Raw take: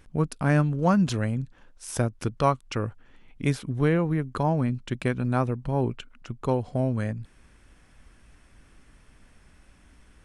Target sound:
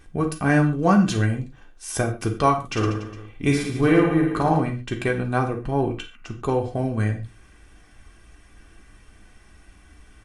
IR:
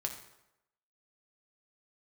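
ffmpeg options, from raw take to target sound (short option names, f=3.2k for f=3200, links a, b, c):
-filter_complex "[0:a]aecho=1:1:2.6:0.5,asettb=1/sr,asplit=3[a][b][c];[a]atrim=end=2.534[d];[b]atrim=start=2.53:end=4.6,asetpts=PTS-STARTPTS,afade=t=in:d=0.004:c=qsin,afade=t=out:st=2.066:d=0.004:c=qsin,aecho=1:1:50|112.5|190.6|288.3|410.4:0.631|0.398|0.251|0.158|0.1,atrim=end_sample=91287[e];[c]atrim=start=4.596[f];[d][e]acrossfade=d=0.004:c1=hsin:c2=qsin[g];[g][f]acrossfade=d=0.004:c1=qsin:c2=hsin[h];[1:a]atrim=start_sample=2205,afade=t=out:st=0.29:d=0.01,atrim=end_sample=13230,asetrate=70560,aresample=44100[i];[h][i]afir=irnorm=-1:irlink=0,volume=7.5dB"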